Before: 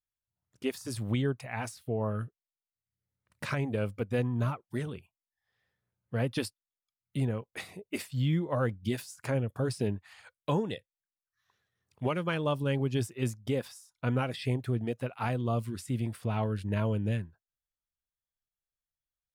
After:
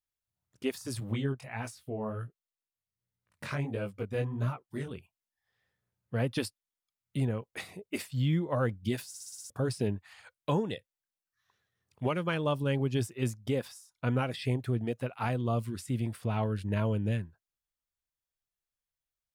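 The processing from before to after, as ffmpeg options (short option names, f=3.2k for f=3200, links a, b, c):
-filter_complex "[0:a]asettb=1/sr,asplit=3[a][b][c];[a]atrim=end=1.004[d];[b]atrim=start=1:end=4.91,asetpts=PTS-STARTPTS,afade=t=in:d=0.004:c=qsin,afade=t=out:st=3.906:d=0.004:c=qsin,flanger=delay=15.5:depth=7.4:speed=1.4[e];[c]atrim=start=4.906[f];[d][e]acrossfade=d=0.004:c1=hsin:c2=qsin[g];[g][f]acrossfade=d=0.004:c1=qsin:c2=hsin,asplit=8[h][i][j][k][l][m][n][o];[h]atrim=end=9.142[p];[i]atrim=start=9.078:end=9.142[q];[j]atrim=start=9.078:end=9.142[r];[k]atrim=start=9.078:end=9.142[s];[l]atrim=start=9.078:end=9.142[t];[m]atrim=start=9.078:end=9.142[u];[n]atrim=start=9.078:end=9.142[v];[o]atrim=start=9.498[w];[p][q]acrossfade=d=0.004:c1=hsin:c2=hsin[x];[x][r]acrossfade=d=0.004:c1=hsin:c2=hsin[y];[y][s]acrossfade=d=0.004:c1=hsin:c2=hsin[z];[z][t]acrossfade=d=0.004:c1=hsin:c2=hsin[aa];[aa][u]acrossfade=d=0.004:c1=hsin:c2=hsin[ab];[ab][v]acrossfade=d=0.004:c1=hsin:c2=hsin[ac];[ac][w]acrossfade=d=0.004:c1=hsin:c2=hsin"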